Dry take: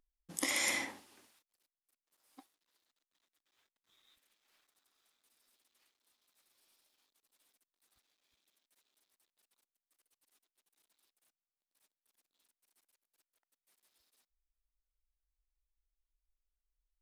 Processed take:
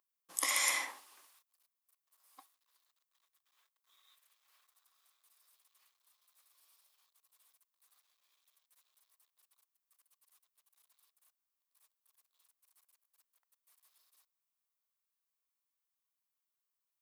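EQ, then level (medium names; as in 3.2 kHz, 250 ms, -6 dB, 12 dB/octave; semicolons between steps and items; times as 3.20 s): high-pass 640 Hz 12 dB/octave; peaking EQ 1.1 kHz +10 dB 0.27 oct; treble shelf 11 kHz +11 dB; 0.0 dB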